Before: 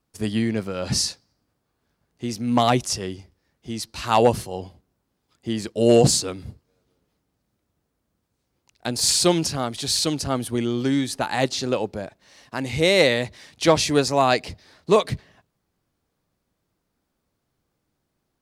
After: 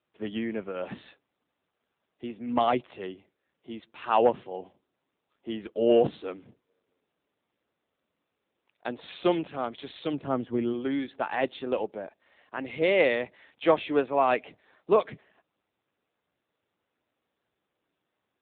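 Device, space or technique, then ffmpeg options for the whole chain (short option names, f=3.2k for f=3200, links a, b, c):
telephone: -filter_complex "[0:a]asplit=3[a][b][c];[a]afade=t=out:st=10.12:d=0.02[d];[b]aemphasis=mode=reproduction:type=bsi,afade=t=in:st=10.12:d=0.02,afade=t=out:st=10.72:d=0.02[e];[c]afade=t=in:st=10.72:d=0.02[f];[d][e][f]amix=inputs=3:normalize=0,highpass=290,lowpass=3.2k,volume=-3.5dB" -ar 8000 -c:a libopencore_amrnb -b:a 7400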